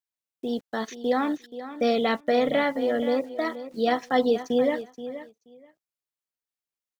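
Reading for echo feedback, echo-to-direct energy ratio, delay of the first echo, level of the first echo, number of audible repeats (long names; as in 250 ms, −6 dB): 16%, −13.0 dB, 478 ms, −13.0 dB, 2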